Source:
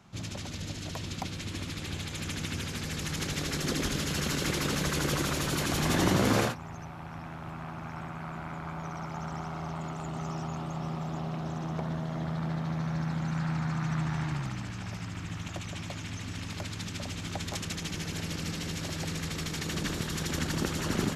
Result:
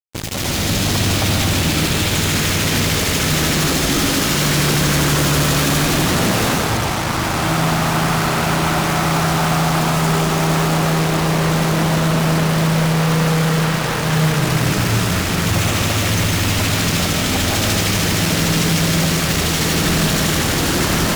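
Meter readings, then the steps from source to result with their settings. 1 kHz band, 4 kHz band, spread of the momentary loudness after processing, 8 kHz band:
+17.5 dB, +18.0 dB, 2 LU, +18.0 dB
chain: level rider gain up to 15 dB; fuzz box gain 42 dB, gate -34 dBFS; algorithmic reverb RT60 1.9 s, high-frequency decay 0.7×, pre-delay 80 ms, DRR -0.5 dB; Chebyshev shaper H 7 -12 dB, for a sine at -7 dBFS; trim -5.5 dB

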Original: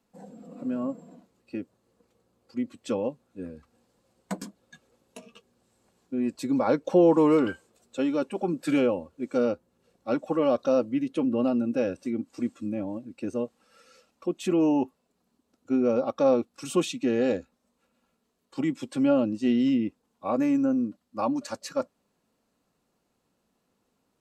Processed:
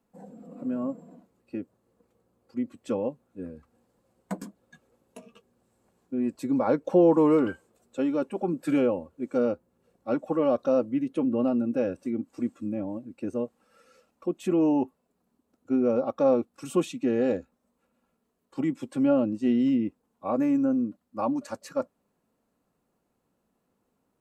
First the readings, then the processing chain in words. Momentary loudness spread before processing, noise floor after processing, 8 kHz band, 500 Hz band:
15 LU, -76 dBFS, no reading, -0.5 dB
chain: peaking EQ 4.5 kHz -8.5 dB 2 oct

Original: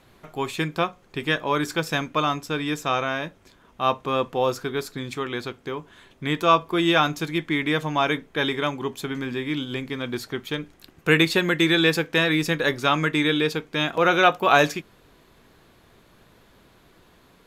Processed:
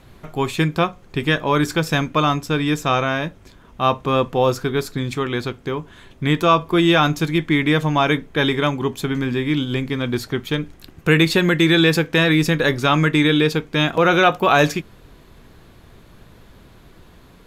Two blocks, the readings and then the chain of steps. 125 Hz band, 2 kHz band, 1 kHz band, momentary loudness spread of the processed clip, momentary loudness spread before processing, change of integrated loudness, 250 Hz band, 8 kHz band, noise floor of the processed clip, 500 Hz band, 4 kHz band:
+9.5 dB, +3.0 dB, +3.0 dB, 10 LU, 13 LU, +4.5 dB, +6.5 dB, +4.0 dB, -48 dBFS, +4.5 dB, +3.5 dB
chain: bass shelf 170 Hz +10.5 dB; in parallel at +2.5 dB: peak limiter -11.5 dBFS, peak gain reduction 9.5 dB; on the sum: trim -3 dB

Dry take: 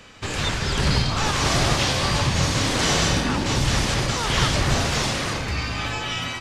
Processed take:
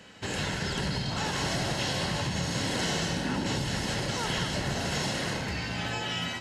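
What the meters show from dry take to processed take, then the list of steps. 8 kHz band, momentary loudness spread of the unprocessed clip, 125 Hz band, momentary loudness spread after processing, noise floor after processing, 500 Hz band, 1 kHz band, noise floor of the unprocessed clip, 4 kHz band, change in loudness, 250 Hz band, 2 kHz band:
-9.5 dB, 6 LU, -9.0 dB, 3 LU, -35 dBFS, -7.0 dB, -9.0 dB, -30 dBFS, -8.0 dB, -8.0 dB, -6.0 dB, -7.5 dB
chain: peaking EQ 180 Hz +6 dB 0.39 oct; band-stop 5.9 kHz, Q 23; compression, threshold -21 dBFS, peak gain reduction 7.5 dB; comb of notches 1.2 kHz; flutter echo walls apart 11.8 m, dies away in 0.32 s; trim -3.5 dB

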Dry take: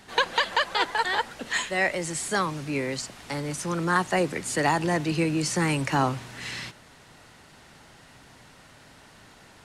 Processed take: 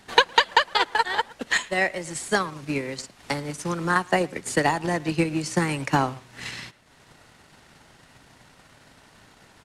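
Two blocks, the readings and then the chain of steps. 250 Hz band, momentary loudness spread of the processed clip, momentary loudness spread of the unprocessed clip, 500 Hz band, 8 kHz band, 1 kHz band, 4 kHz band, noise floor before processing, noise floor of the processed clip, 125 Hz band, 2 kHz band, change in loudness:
+0.5 dB, 15 LU, 10 LU, +1.5 dB, -1.5 dB, +2.5 dB, +3.5 dB, -53 dBFS, -55 dBFS, -0.5 dB, +2.5 dB, +2.0 dB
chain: speakerphone echo 110 ms, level -14 dB; transient shaper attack +10 dB, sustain -7 dB; trim -2 dB

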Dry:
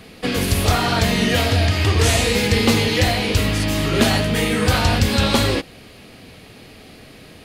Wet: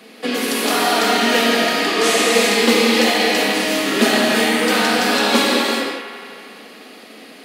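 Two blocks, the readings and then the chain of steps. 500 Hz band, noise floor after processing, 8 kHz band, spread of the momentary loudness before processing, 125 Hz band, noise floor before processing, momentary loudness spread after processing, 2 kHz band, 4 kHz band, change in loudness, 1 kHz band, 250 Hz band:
+4.0 dB, -41 dBFS, +3.0 dB, 4 LU, -18.0 dB, -43 dBFS, 8 LU, +5.0 dB, +3.5 dB, +2.0 dB, +5.0 dB, +1.5 dB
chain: elliptic high-pass 220 Hz, stop band 80 dB; on a send: feedback echo behind a band-pass 84 ms, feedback 80%, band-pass 1.3 kHz, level -9 dB; on the sum: gated-style reverb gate 430 ms flat, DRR -2 dB

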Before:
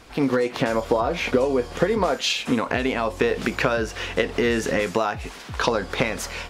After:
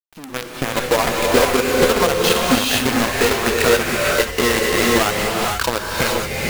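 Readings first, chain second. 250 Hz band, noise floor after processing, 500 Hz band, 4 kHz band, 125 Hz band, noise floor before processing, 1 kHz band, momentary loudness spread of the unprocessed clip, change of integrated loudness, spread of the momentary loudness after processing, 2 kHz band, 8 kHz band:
+3.5 dB, -34 dBFS, +4.5 dB, +8.5 dB, +4.5 dB, -39 dBFS, +6.5 dB, 4 LU, +6.5 dB, 6 LU, +7.0 dB, +13.0 dB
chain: expander on every frequency bin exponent 1.5; level rider gain up to 8 dB; in parallel at -10 dB: saturation -17 dBFS, distortion -9 dB; on the sum: companded quantiser 2-bit; gated-style reverb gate 500 ms rising, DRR -2.5 dB; trim -10 dB

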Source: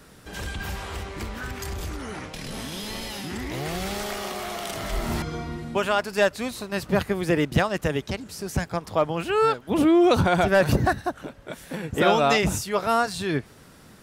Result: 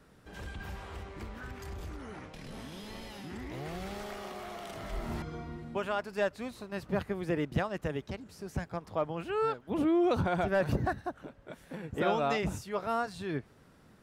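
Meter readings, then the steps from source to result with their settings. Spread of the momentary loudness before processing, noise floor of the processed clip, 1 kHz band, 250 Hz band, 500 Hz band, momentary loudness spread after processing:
15 LU, -60 dBFS, -10.0 dB, -9.0 dB, -9.5 dB, 15 LU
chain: treble shelf 3.1 kHz -9.5 dB; trim -9 dB

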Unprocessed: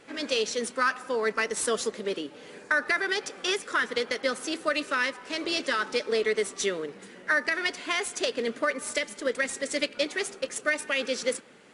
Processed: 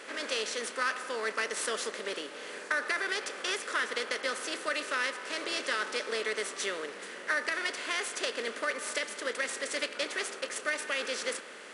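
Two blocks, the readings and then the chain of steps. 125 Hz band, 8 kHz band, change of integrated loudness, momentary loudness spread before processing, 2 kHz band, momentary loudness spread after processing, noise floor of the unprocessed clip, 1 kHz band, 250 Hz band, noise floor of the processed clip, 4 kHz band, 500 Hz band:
under -10 dB, -3.0 dB, -4.5 dB, 5 LU, -3.5 dB, 5 LU, -49 dBFS, -4.0 dB, -9.5 dB, -45 dBFS, -3.0 dB, -7.0 dB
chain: spectral levelling over time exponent 0.6; high-pass 490 Hz 6 dB/octave; trim -7.5 dB

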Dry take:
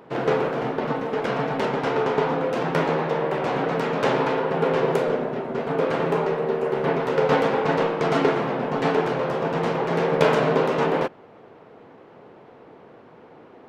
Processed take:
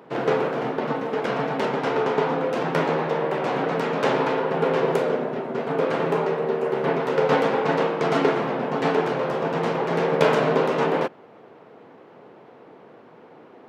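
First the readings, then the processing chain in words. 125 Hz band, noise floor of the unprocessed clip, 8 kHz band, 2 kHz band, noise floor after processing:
-2.0 dB, -48 dBFS, no reading, 0.0 dB, -49 dBFS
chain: high-pass 130 Hz

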